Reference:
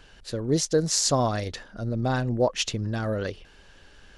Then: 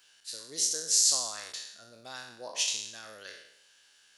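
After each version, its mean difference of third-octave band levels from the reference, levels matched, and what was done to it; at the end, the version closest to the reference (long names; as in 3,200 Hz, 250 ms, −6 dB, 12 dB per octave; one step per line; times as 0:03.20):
11.0 dB: peak hold with a decay on every bin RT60 0.79 s
first difference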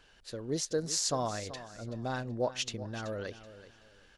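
4.0 dB: low-shelf EQ 260 Hz −6.5 dB
on a send: repeating echo 379 ms, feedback 27%, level −14.5 dB
on the sum: level −7.5 dB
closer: second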